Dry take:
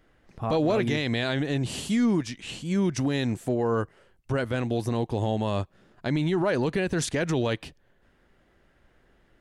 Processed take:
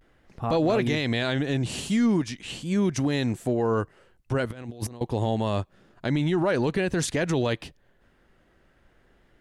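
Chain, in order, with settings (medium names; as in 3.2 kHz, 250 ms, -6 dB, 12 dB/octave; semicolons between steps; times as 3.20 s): 4.49–5.01 s: compressor with a negative ratio -35 dBFS, ratio -0.5; vibrato 0.44 Hz 46 cents; trim +1 dB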